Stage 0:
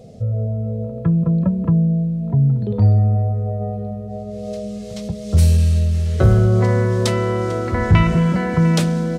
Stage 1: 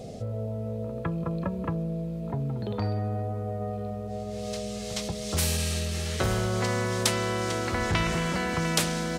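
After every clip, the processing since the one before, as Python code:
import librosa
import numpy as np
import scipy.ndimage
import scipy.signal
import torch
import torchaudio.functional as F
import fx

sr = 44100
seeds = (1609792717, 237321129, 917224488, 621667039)

y = fx.spectral_comp(x, sr, ratio=2.0)
y = F.gain(torch.from_numpy(y), -5.0).numpy()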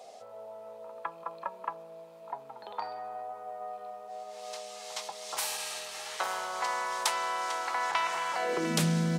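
y = fx.filter_sweep_highpass(x, sr, from_hz=890.0, to_hz=160.0, start_s=8.33, end_s=8.84, q=3.4)
y = F.gain(torch.from_numpy(y), -5.0).numpy()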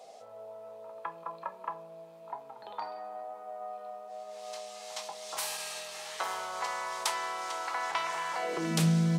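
y = fx.room_shoebox(x, sr, seeds[0], volume_m3=210.0, walls='furnished', distance_m=0.62)
y = F.gain(torch.from_numpy(y), -2.5).numpy()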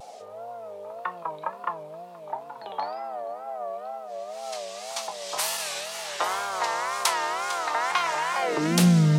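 y = fx.wow_flutter(x, sr, seeds[1], rate_hz=2.1, depth_cents=140.0)
y = y + 10.0 ** (-23.5 / 20.0) * np.pad(y, (int(475 * sr / 1000.0), 0))[:len(y)]
y = F.gain(torch.from_numpy(y), 7.5).numpy()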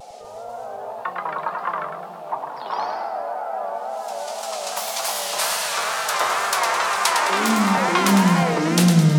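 y = fx.echo_pitch(x, sr, ms=245, semitones=2, count=2, db_per_echo=-3.0)
y = fx.echo_feedback(y, sr, ms=106, feedback_pct=47, wet_db=-6.0)
y = F.gain(torch.from_numpy(y), 3.0).numpy()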